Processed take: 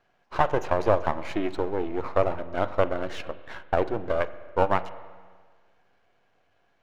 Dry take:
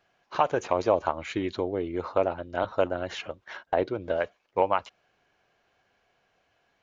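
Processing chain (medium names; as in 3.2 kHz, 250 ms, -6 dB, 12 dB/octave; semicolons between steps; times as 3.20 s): partial rectifier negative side -12 dB; treble shelf 2.6 kHz -8.5 dB; spring tank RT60 1.6 s, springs 38/43 ms, chirp 25 ms, DRR 14 dB; trim +5.5 dB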